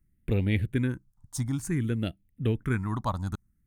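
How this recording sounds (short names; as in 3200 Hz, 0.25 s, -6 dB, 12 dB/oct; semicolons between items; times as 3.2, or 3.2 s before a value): phasing stages 4, 0.56 Hz, lowest notch 420–1100 Hz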